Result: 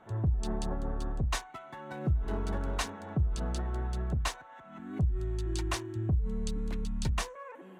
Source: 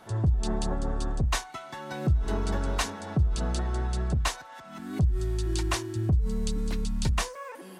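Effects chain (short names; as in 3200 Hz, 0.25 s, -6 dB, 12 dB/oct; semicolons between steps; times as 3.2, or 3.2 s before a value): Wiener smoothing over 9 samples; gain -4.5 dB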